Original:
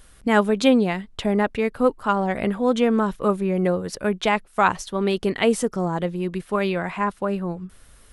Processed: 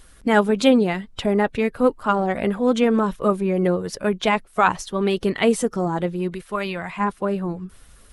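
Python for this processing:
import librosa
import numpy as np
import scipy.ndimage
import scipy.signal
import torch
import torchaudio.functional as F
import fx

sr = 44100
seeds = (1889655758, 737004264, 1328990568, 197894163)

y = fx.spec_quant(x, sr, step_db=15)
y = fx.peak_eq(y, sr, hz=fx.line((6.34, 170.0), (6.98, 480.0)), db=-7.5, octaves=2.8, at=(6.34, 6.98), fade=0.02)
y = F.gain(torch.from_numpy(y), 1.5).numpy()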